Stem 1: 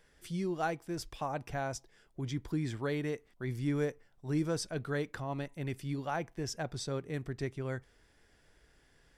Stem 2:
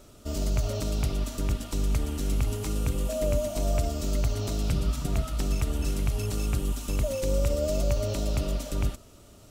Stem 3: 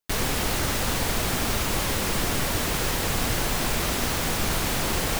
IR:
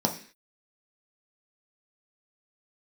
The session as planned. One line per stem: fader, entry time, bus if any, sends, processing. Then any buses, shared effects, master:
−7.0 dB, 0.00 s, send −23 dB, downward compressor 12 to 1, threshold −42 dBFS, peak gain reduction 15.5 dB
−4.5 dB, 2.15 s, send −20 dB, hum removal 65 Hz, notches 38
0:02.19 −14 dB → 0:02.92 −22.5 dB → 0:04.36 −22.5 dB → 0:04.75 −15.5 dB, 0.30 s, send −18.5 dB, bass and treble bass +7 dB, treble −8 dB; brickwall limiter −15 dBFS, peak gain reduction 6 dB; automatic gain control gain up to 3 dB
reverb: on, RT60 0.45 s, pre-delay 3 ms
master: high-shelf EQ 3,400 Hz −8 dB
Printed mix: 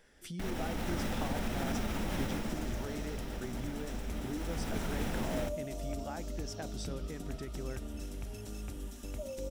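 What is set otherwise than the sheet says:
stem 1 −7.0 dB → +1.5 dB
stem 2 −4.5 dB → −14.0 dB
master: missing high-shelf EQ 3,400 Hz −8 dB

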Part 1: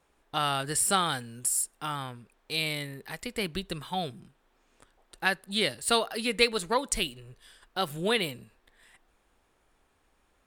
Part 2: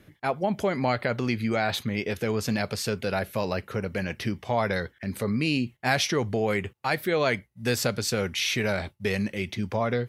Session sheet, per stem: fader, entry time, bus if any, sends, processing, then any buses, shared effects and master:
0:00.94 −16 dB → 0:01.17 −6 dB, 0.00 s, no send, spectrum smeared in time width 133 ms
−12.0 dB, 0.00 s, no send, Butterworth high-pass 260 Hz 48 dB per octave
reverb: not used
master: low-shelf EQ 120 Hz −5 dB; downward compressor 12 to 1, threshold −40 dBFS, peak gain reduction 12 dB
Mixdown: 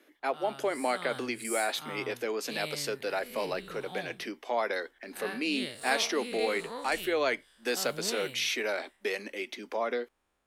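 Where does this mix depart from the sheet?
stem 2 −12.0 dB → −3.5 dB
master: missing downward compressor 12 to 1, threshold −40 dBFS, peak gain reduction 12 dB

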